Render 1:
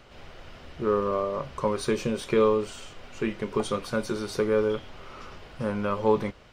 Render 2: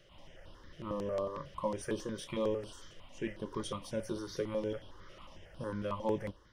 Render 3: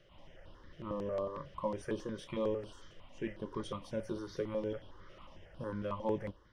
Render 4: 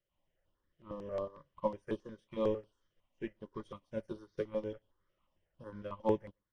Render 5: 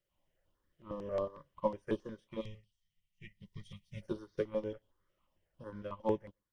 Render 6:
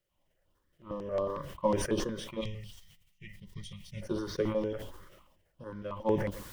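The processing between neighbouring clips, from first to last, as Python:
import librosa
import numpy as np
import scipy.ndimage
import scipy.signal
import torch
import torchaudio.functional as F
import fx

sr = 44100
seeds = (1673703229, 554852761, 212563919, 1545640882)

y1 = fx.ripple_eq(x, sr, per_octave=1.2, db=7)
y1 = fx.phaser_held(y1, sr, hz=11.0, low_hz=250.0, high_hz=6900.0)
y1 = y1 * librosa.db_to_amplitude(-7.5)
y2 = fx.lowpass(y1, sr, hz=2900.0, slope=6)
y2 = y2 * librosa.db_to_amplitude(-1.0)
y3 = y2 + 10.0 ** (-21.5 / 20.0) * np.pad(y2, (int(120 * sr / 1000.0), 0))[:len(y2)]
y3 = fx.upward_expand(y3, sr, threshold_db=-51.0, expansion=2.5)
y3 = y3 * librosa.db_to_amplitude(5.5)
y4 = fx.rider(y3, sr, range_db=4, speed_s=0.5)
y4 = fx.spec_box(y4, sr, start_s=2.41, length_s=1.61, low_hz=210.0, high_hz=1800.0, gain_db=-24)
y4 = y4 * librosa.db_to_amplitude(1.5)
y5 = fx.sustainer(y4, sr, db_per_s=50.0)
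y5 = y5 * librosa.db_to_amplitude(3.0)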